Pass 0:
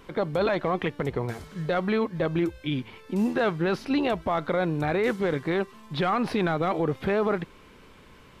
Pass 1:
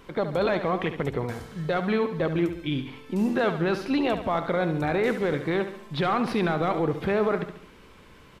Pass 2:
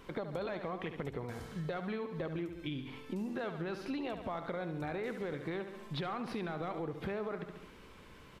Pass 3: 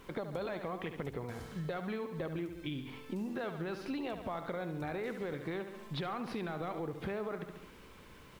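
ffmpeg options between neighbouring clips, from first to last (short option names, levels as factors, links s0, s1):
-af "aecho=1:1:70|140|210|280|350:0.316|0.155|0.0759|0.0372|0.0182"
-af "acompressor=threshold=0.0251:ratio=6,volume=0.631"
-af "acrusher=bits=10:mix=0:aa=0.000001"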